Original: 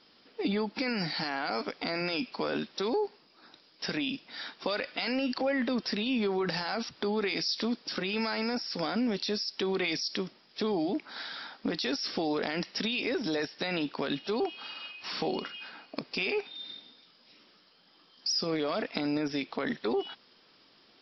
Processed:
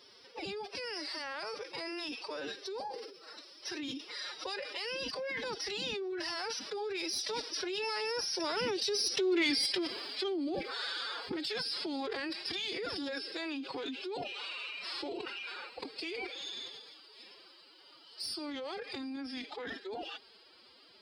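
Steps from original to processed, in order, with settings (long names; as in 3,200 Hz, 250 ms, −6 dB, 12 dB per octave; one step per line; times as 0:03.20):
one-sided soft clipper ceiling −15 dBFS
source passing by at 0:09.36, 15 m/s, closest 1.3 metres
hum removal 425.3 Hz, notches 35
phase-vocoder pitch shift with formants kept +11 semitones
high-pass filter 77 Hz 12 dB per octave
high-shelf EQ 5,000 Hz +7 dB
envelope flattener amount 70%
level +2.5 dB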